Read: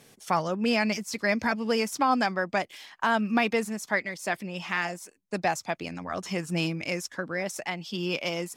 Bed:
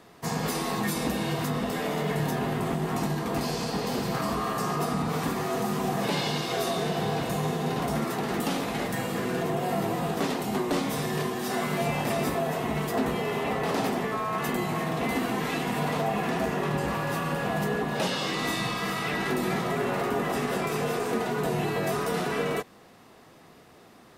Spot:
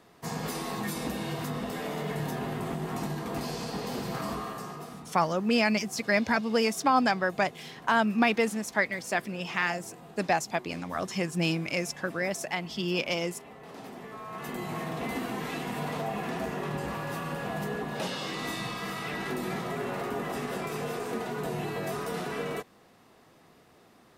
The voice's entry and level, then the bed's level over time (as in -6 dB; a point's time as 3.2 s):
4.85 s, +0.5 dB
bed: 4.33 s -5 dB
5.17 s -20 dB
13.58 s -20 dB
14.74 s -5.5 dB